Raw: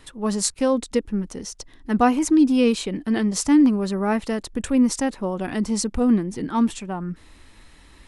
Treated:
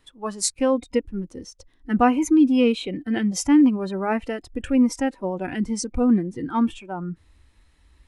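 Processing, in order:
noise reduction from a noise print of the clip's start 13 dB

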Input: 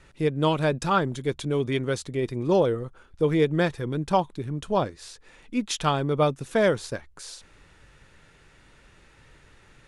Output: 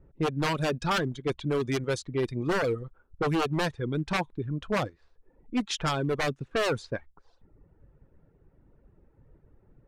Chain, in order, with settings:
wave folding −20 dBFS
low-pass that shuts in the quiet parts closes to 430 Hz, open at −22.5 dBFS
reverb reduction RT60 0.75 s

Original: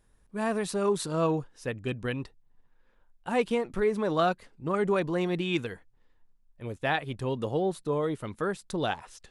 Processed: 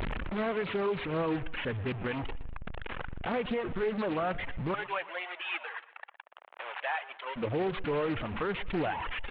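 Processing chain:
linear delta modulator 16 kbit/s, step −27.5 dBFS
reverb reduction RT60 1.8 s
0:04.74–0:07.36: high-pass filter 690 Hz 24 dB per octave
brickwall limiter −24.5 dBFS, peak gain reduction 9.5 dB
repeating echo 120 ms, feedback 40%, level −18 dB
highs frequency-modulated by the lows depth 0.31 ms
level +1.5 dB

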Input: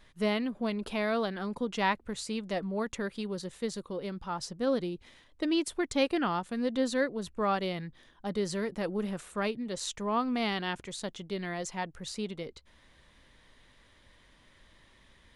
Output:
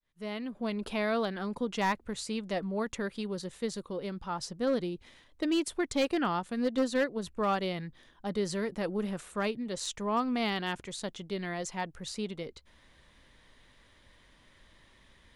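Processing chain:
fade in at the beginning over 0.81 s
0:06.55–0:07.23: transient designer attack +5 dB, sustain −3 dB
hard clipping −21.5 dBFS, distortion −19 dB

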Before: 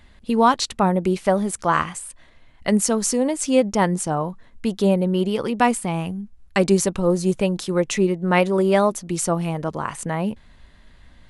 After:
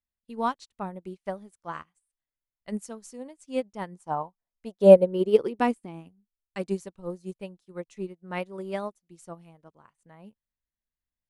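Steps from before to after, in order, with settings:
0:03.98–0:06.07: parametric band 1,000 Hz → 260 Hz +13.5 dB 0.78 octaves
expander for the loud parts 2.5 to 1, over −36 dBFS
level −1 dB

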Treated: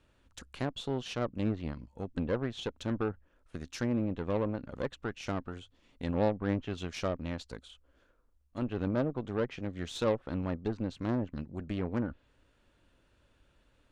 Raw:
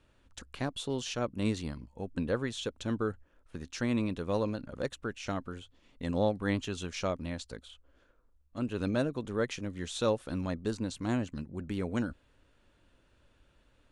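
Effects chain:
treble cut that deepens with the level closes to 1,200 Hz, closed at −26.5 dBFS
harmonic generator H 3 −23 dB, 8 −25 dB, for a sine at −17 dBFS
level +1 dB

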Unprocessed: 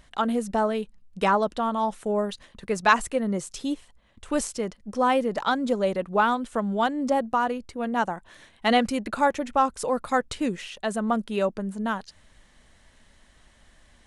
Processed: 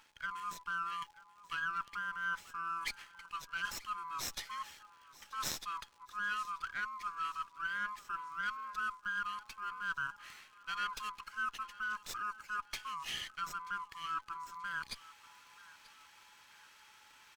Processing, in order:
neighbouring bands swapped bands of 1,000 Hz
reversed playback
downward compressor 6 to 1, threshold −36 dBFS, peak gain reduction 21 dB
reversed playback
inverse Chebyshev high-pass filter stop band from 630 Hz, stop band 50 dB
speed change −19%
surface crackle 300 per second −59 dBFS
on a send: repeating echo 934 ms, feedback 42%, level −20 dB
on the sum: windowed peak hold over 3 samples
level +3 dB

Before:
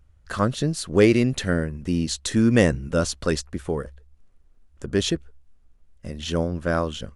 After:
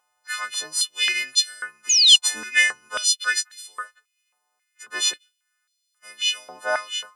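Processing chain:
every partial snapped to a pitch grid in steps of 3 semitones
sound drawn into the spectrogram fall, 0:01.89–0:02.16, 2,800–7,100 Hz −15 dBFS
high-pass on a step sequencer 3.7 Hz 820–4,000 Hz
level −3 dB

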